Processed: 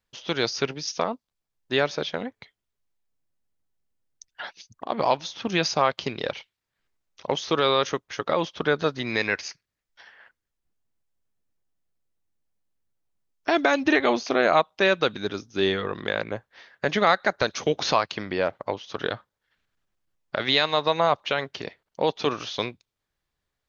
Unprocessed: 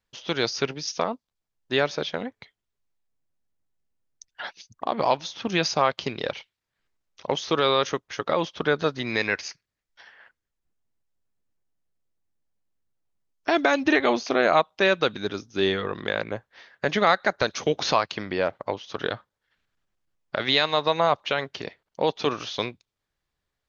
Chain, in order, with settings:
0:04.42–0:04.90: downward compressor, threshold −32 dBFS, peak gain reduction 10 dB

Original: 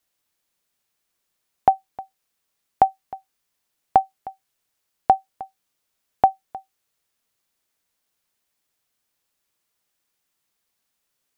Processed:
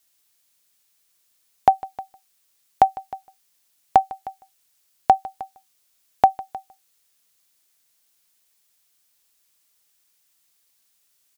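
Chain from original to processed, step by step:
high-shelf EQ 2,500 Hz +11.5 dB
on a send: single-tap delay 153 ms −20 dB

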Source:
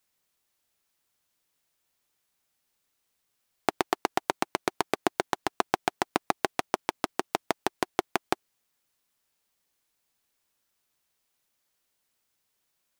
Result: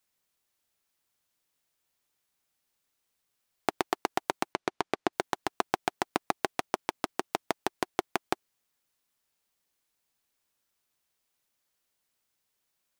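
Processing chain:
0:04.53–0:05.13: high-frequency loss of the air 68 metres
level −2.5 dB

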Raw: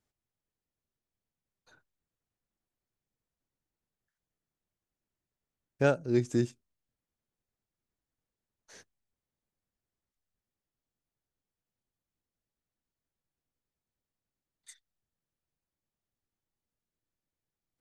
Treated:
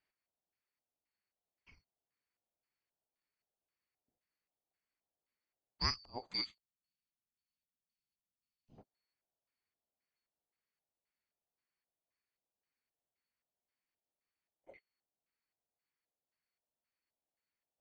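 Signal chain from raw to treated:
band-splitting scrambler in four parts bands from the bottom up 2341
0:06.44–0:08.78: flat-topped bell 840 Hz −16 dB 2.9 octaves
auto-filter low-pass square 1.9 Hz 710–2,200 Hz

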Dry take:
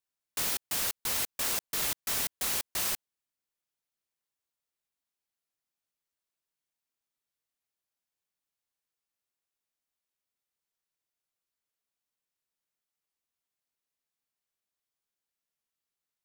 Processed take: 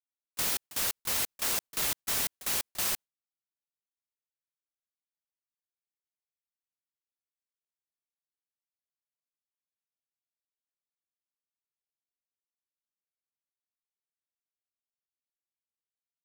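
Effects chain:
noise gate with hold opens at −20 dBFS
level +1 dB

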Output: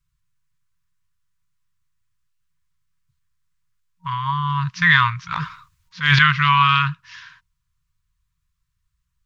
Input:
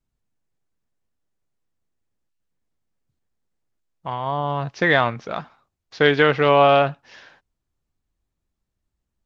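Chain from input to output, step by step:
brick-wall band-stop 180–940 Hz
0:05.32–0:06.19: transient designer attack −11 dB, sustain +12 dB
level +5.5 dB

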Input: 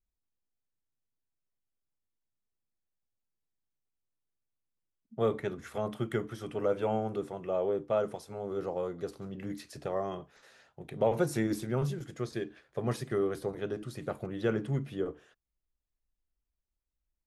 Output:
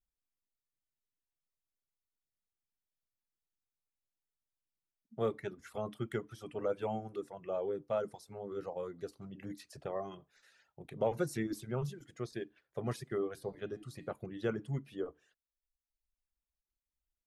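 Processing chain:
reverb reduction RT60 1 s
0:13.34–0:14.10: hum removal 145.9 Hz, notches 33
level −4.5 dB

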